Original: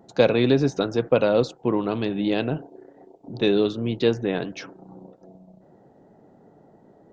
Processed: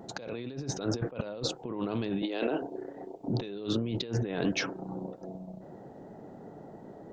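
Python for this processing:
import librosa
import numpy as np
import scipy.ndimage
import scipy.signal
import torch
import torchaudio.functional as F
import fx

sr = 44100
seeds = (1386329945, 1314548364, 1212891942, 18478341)

y = fx.highpass(x, sr, hz=300.0, slope=24, at=(2.22, 2.62))
y = fx.over_compress(y, sr, threshold_db=-32.0, ratio=-1.0)
y = y * librosa.db_to_amplitude(-2.0)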